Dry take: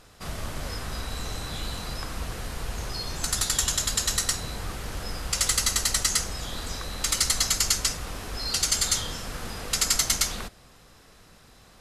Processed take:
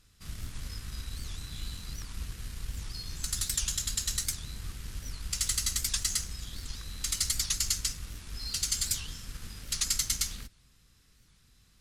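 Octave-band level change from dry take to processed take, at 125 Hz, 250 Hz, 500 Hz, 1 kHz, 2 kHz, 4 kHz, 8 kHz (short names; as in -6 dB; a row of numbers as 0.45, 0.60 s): -5.0, -10.0, -19.0, -16.0, -10.5, -7.0, -6.0 dB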